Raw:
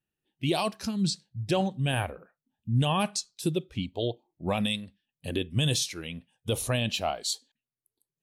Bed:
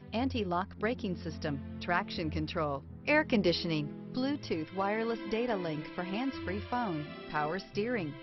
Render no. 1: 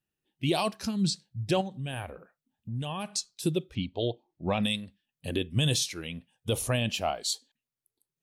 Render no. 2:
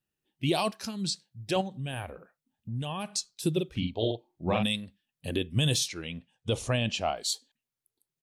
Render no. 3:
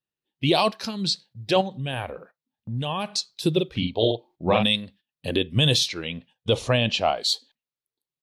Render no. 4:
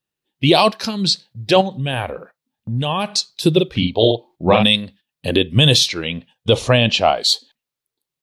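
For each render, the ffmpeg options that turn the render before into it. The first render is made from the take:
ffmpeg -i in.wav -filter_complex "[0:a]asplit=3[link_01][link_02][link_03];[link_01]afade=type=out:start_time=1.6:duration=0.02[link_04];[link_02]acompressor=threshold=-38dB:ratio=2:attack=3.2:release=140:knee=1:detection=peak,afade=type=in:start_time=1.6:duration=0.02,afade=type=out:start_time=3.1:duration=0.02[link_05];[link_03]afade=type=in:start_time=3.1:duration=0.02[link_06];[link_04][link_05][link_06]amix=inputs=3:normalize=0,asettb=1/sr,asplit=3[link_07][link_08][link_09];[link_07]atrim=end=3.754[link_10];[link_08]atrim=start=3.75:end=4.63,asetpts=PTS-STARTPTS,afade=type=in:duration=0.004:curve=qsin,afade=type=out:start_time=0.876:duration=0.004:curve=qsin,lowpass=frequency=5600:width=0.5412,lowpass=frequency=5600:width=1.3066[link_11];[link_09]atrim=start=4.626[link_12];[link_10][link_11]acrossfade=duration=0.004:curve1=hsin:curve2=qsin[link_13];[link_13][link_12]acrossfade=duration=0.004:curve1=qsin:curve2=hsin,asettb=1/sr,asplit=3[link_14][link_15][link_16];[link_14]atrim=end=6.594[link_17];[link_15]atrim=start=6.59:end=7.19,asetpts=PTS-STARTPTS,afade=type=in:duration=0.004:curve=qsin,afade=type=out:start_time=0.596:duration=0.004:curve=qsin,equalizer=frequency=3900:width=6:gain=-8.5[link_18];[link_16]atrim=start=7.186[link_19];[link_17][link_18]acrossfade=duration=0.004:curve1=hsin:curve2=qsin[link_20];[link_20][link_19]acrossfade=duration=0.004:curve1=qsin:curve2=hsin" out.wav
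ffmpeg -i in.wav -filter_complex "[0:a]asettb=1/sr,asplit=3[link_01][link_02][link_03];[link_01]atrim=end=0.714[link_04];[link_02]atrim=start=0.71:end=1.56,asetpts=PTS-STARTPTS,afade=type=in:duration=0.004:curve=qsin,afade=type=out:start_time=0.846:duration=0.004:curve=qsin,lowshelf=frequency=230:gain=-11.5[link_05];[link_03]atrim=start=1.556[link_06];[link_04][link_05]acrossfade=duration=0.004:curve1=hsin:curve2=qsin[link_07];[link_07][link_06]acrossfade=duration=0.004:curve1=qsin:curve2=hsin,asplit=3[link_08][link_09][link_10];[link_08]afade=type=out:start_time=3.55:duration=0.02[link_11];[link_09]asplit=2[link_12][link_13];[link_13]adelay=45,volume=-4dB[link_14];[link_12][link_14]amix=inputs=2:normalize=0,afade=type=in:start_time=3.55:duration=0.02,afade=type=out:start_time=4.62:duration=0.02[link_15];[link_10]afade=type=in:start_time=4.62:duration=0.02[link_16];[link_11][link_15][link_16]amix=inputs=3:normalize=0,asettb=1/sr,asplit=3[link_17][link_18][link_19];[link_17]atrim=end=5.884[link_20];[link_18]atrim=start=5.88:end=7.17,asetpts=PTS-STARTPTS,afade=type=in:duration=0.004:curve=qsin,afade=type=out:start_time=1.286:duration=0.004:curve=qsin,lowpass=frequency=7900:width=0.5412,lowpass=frequency=7900:width=1.3066[link_21];[link_19]atrim=start=7.166[link_22];[link_20][link_21]acrossfade=duration=0.004:curve1=hsin:curve2=qsin[link_23];[link_23][link_22]acrossfade=duration=0.004:curve1=qsin:curve2=hsin" out.wav
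ffmpeg -i in.wav -af "agate=range=-12dB:threshold=-56dB:ratio=16:detection=peak,equalizer=frequency=125:width_type=o:width=1:gain=4,equalizer=frequency=250:width_type=o:width=1:gain=3,equalizer=frequency=500:width_type=o:width=1:gain=7,equalizer=frequency=1000:width_type=o:width=1:gain=6,equalizer=frequency=2000:width_type=o:width=1:gain=4,equalizer=frequency=4000:width_type=o:width=1:gain=10,equalizer=frequency=8000:width_type=o:width=1:gain=-4" out.wav
ffmpeg -i in.wav -af "volume=7.5dB,alimiter=limit=-1dB:level=0:latency=1" out.wav

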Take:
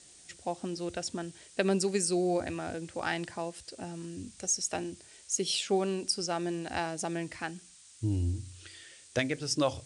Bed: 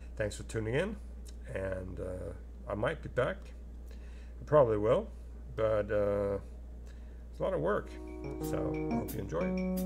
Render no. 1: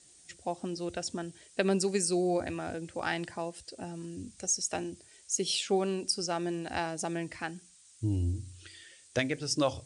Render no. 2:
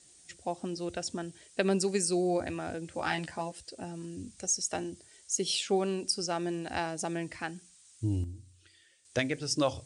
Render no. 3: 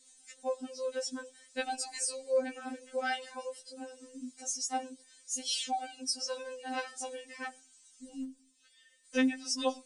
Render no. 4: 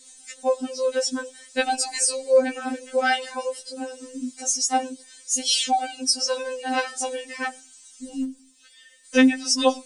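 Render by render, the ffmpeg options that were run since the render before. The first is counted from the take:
ffmpeg -i in.wav -af "afftdn=noise_reduction=6:noise_floor=-56" out.wav
ffmpeg -i in.wav -filter_complex "[0:a]asettb=1/sr,asplit=3[link_01][link_02][link_03];[link_01]atrim=end=2.904[link_04];[link_02]atrim=start=2.9:end=3.52,asetpts=PTS-STARTPTS,afade=type=in:duration=0.004:curve=qsin,afade=type=out:start_time=0.616:duration=0.004:curve=qsin,asplit=2[link_05][link_06];[link_06]adelay=13,volume=-4.5dB[link_07];[link_05][link_07]amix=inputs=2:normalize=0,atrim=end_sample=27342[link_08];[link_03]atrim=start=3.516[link_09];[link_04][link_08]acrossfade=duration=0.004:curve1=hsin:curve2=qsin[link_10];[link_10][link_09]acrossfade=duration=0.004:curve1=qsin:curve2=hsin,asettb=1/sr,asplit=3[link_11][link_12][link_13];[link_11]atrim=end=4.694[link_14];[link_12]atrim=start=4.69:end=5.46,asetpts=PTS-STARTPTS,afade=type=in:duration=0.004:curve=qsin,afade=type=out:start_time=0.766:duration=0.004:curve=qsin,bandreject=frequency=2500:width=12[link_15];[link_13]atrim=start=5.456[link_16];[link_14][link_15]acrossfade=duration=0.004:curve1=hsin:curve2=qsin[link_17];[link_17][link_16]acrossfade=duration=0.004:curve1=qsin:curve2=hsin,asplit=3[link_18][link_19][link_20];[link_18]atrim=end=8.24,asetpts=PTS-STARTPTS,afade=type=out:start_time=8.05:duration=0.19:curve=log:silence=0.298538[link_21];[link_19]atrim=start=8.24:end=9.05,asetpts=PTS-STARTPTS,volume=-10.5dB[link_22];[link_20]atrim=start=9.05,asetpts=PTS-STARTPTS,afade=type=in:duration=0.19:curve=log:silence=0.298538[link_23];[link_21][link_22][link_23]concat=n=3:v=0:a=1" out.wav
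ffmpeg -i in.wav -af "afftfilt=real='re*3.46*eq(mod(b,12),0)':imag='im*3.46*eq(mod(b,12),0)':win_size=2048:overlap=0.75" out.wav
ffmpeg -i in.wav -af "volume=12dB" out.wav

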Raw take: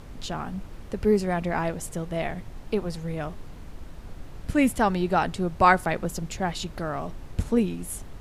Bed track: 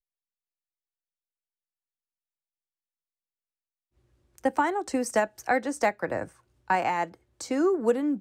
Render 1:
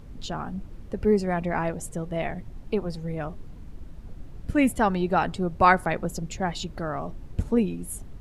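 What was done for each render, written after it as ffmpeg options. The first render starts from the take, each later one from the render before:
ffmpeg -i in.wav -af "afftdn=noise_reduction=9:noise_floor=-42" out.wav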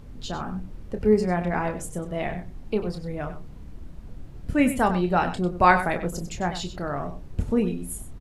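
ffmpeg -i in.wav -filter_complex "[0:a]asplit=2[link_01][link_02];[link_02]adelay=28,volume=-8dB[link_03];[link_01][link_03]amix=inputs=2:normalize=0,aecho=1:1:97:0.266" out.wav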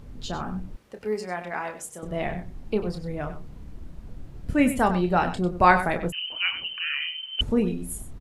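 ffmpeg -i in.wav -filter_complex "[0:a]asettb=1/sr,asplit=3[link_01][link_02][link_03];[link_01]atrim=end=0.764[link_04];[link_02]atrim=start=0.76:end=2.03,asetpts=PTS-STARTPTS,afade=type=in:duration=0.004:curve=qsin,afade=type=out:start_time=1.266:duration=0.004:curve=qsin,highpass=frequency=1000:poles=1[link_05];[link_03]atrim=start=2.026[link_06];[link_04][link_05]acrossfade=duration=0.004:curve1=hsin:curve2=qsin[link_07];[link_07][link_06]acrossfade=duration=0.004:curve1=qsin:curve2=hsin,asettb=1/sr,asplit=3[link_08][link_09][link_10];[link_08]atrim=end=6.124[link_11];[link_09]atrim=start=6.12:end=7.41,asetpts=PTS-STARTPTS,afade=type=in:duration=0.004:curve=qsin,afade=type=out:start_time=1.286:duration=0.004:curve=qsin,lowpass=frequency=2600:width_type=q:width=0.5098,lowpass=frequency=2600:width_type=q:width=0.6013,lowpass=frequency=2600:width_type=q:width=0.9,lowpass=frequency=2600:width_type=q:width=2.563,afreqshift=-3100[link_12];[link_10]atrim=start=7.406[link_13];[link_11][link_12]acrossfade=duration=0.004:curve1=hsin:curve2=qsin[link_14];[link_14][link_13]acrossfade=duration=0.004:curve1=qsin:curve2=hsin" out.wav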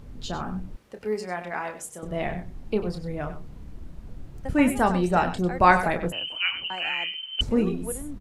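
ffmpeg -i in.wav -i bed.wav -filter_complex "[1:a]volume=-11.5dB[link_01];[0:a][link_01]amix=inputs=2:normalize=0" out.wav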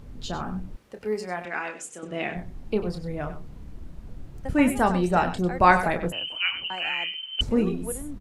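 ffmpeg -i in.wav -filter_complex "[0:a]asettb=1/sr,asplit=3[link_01][link_02][link_03];[link_01]atrim=end=1.454[link_04];[link_02]atrim=start=1.45:end=2.35,asetpts=PTS-STARTPTS,afade=type=in:duration=0.004:curve=qsin,afade=type=out:start_time=0.896:duration=0.004:curve=qsin,highpass=210,equalizer=frequency=300:width_type=q:width=4:gain=4,equalizer=frequency=620:width_type=q:width=4:gain=-4,equalizer=frequency=930:width_type=q:width=4:gain=-4,equalizer=frequency=1500:width_type=q:width=4:gain=4,equalizer=frequency=2600:width_type=q:width=4:gain=8,equalizer=frequency=6900:width_type=q:width=4:gain=3,lowpass=frequency=9300:width=0.5412,lowpass=frequency=9300:width=1.3066[link_05];[link_03]atrim=start=2.346[link_06];[link_04][link_05]acrossfade=duration=0.004:curve1=hsin:curve2=qsin[link_07];[link_07][link_06]acrossfade=duration=0.004:curve1=qsin:curve2=hsin" out.wav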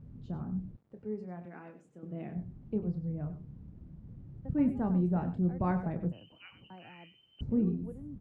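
ffmpeg -i in.wav -af "acrusher=bits=8:mix=0:aa=0.000001,bandpass=frequency=140:width_type=q:width=1.4:csg=0" out.wav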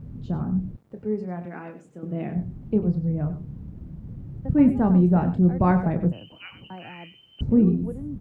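ffmpeg -i in.wav -af "volume=11dB" out.wav

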